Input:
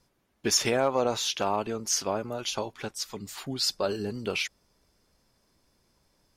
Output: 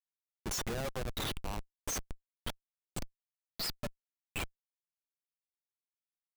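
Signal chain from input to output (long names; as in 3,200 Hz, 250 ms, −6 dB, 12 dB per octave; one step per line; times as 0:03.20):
spectral dynamics exaggerated over time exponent 3
first-order pre-emphasis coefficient 0.8
comparator with hysteresis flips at −41 dBFS
level +8.5 dB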